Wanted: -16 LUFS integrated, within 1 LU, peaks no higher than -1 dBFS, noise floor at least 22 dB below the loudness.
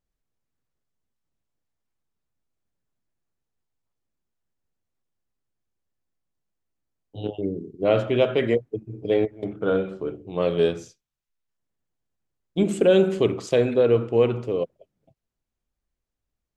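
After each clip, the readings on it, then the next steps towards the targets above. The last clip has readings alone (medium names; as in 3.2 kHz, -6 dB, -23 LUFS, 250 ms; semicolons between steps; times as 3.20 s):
loudness -23.0 LUFS; peak level -7.0 dBFS; loudness target -16.0 LUFS
-> trim +7 dB; peak limiter -1 dBFS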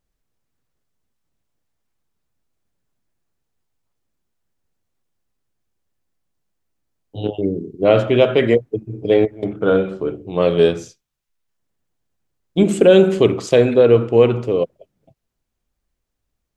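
loudness -16.5 LUFS; peak level -1.0 dBFS; noise floor -77 dBFS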